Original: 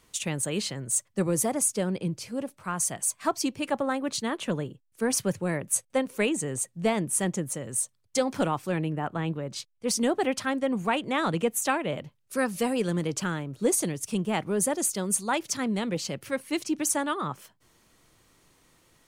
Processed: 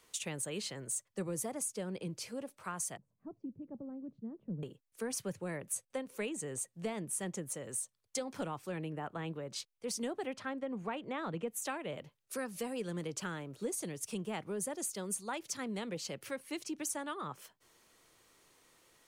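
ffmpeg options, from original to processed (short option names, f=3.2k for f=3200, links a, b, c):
-filter_complex "[0:a]asettb=1/sr,asplit=3[a][b][c];[a]atrim=end=2.974[d];[b]atrim=start=2.97:end=4.63,asetpts=PTS-STARTPTS,afade=t=in:d=0.004:c=qsin,afade=t=out:st=1.656:d=0.004:c=qsin,lowpass=f=180:t=q:w=1.5[e];[c]atrim=start=4.626[f];[d][e]acrossfade=d=0.004:c1=hsin:c2=qsin[g];[g][f]acrossfade=d=0.004:c1=qsin:c2=hsin,asettb=1/sr,asplit=3[h][i][j];[h]atrim=end=10.334[k];[i]atrim=start=10.33:end=11.48,asetpts=PTS-STARTPTS,afade=t=in:d=0.004:c=qsin,afade=t=out:st=1.146:d=0.004:c=qsin,aemphasis=mode=reproduction:type=75fm[l];[j]atrim=start=11.476[m];[k][l]acrossfade=d=0.004:c1=hsin:c2=qsin[n];[n][m]acrossfade=d=0.004:c1=qsin:c2=hsin,equalizer=f=440:w=1.9:g=4,acrossover=split=220[o][p];[p]acompressor=threshold=-35dB:ratio=3[q];[o][q]amix=inputs=2:normalize=0,lowshelf=f=320:g=-11,volume=-2.5dB"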